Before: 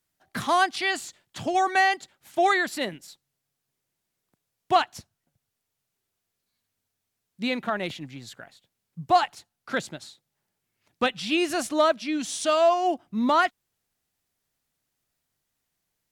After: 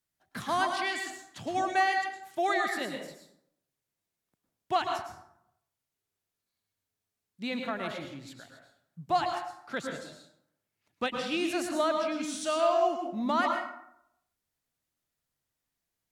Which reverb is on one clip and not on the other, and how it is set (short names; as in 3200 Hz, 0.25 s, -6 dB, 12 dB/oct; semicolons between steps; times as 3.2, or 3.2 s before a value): plate-style reverb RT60 0.74 s, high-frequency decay 0.55×, pre-delay 95 ms, DRR 2.5 dB; gain -7.5 dB